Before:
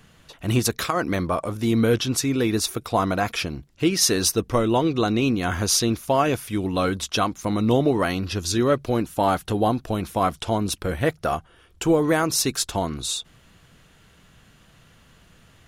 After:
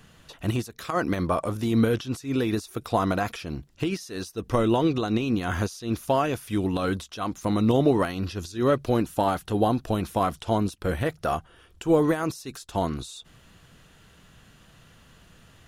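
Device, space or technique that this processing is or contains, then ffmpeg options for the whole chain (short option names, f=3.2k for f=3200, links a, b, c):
de-esser from a sidechain: -filter_complex "[0:a]bandreject=f=2.2k:w=20,asplit=2[a][b];[b]highpass=4.5k,apad=whole_len=691234[c];[a][c]sidechaincompress=threshold=-39dB:ratio=10:attack=1.5:release=100"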